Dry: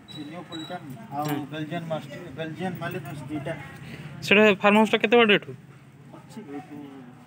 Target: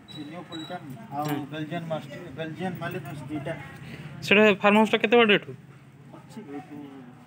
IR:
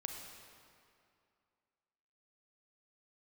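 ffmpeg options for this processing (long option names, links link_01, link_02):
-filter_complex "[0:a]asplit=2[link_01][link_02];[1:a]atrim=start_sample=2205,atrim=end_sample=3087,lowpass=5600[link_03];[link_02][link_03]afir=irnorm=-1:irlink=0,volume=-13.5dB[link_04];[link_01][link_04]amix=inputs=2:normalize=0,volume=-2dB"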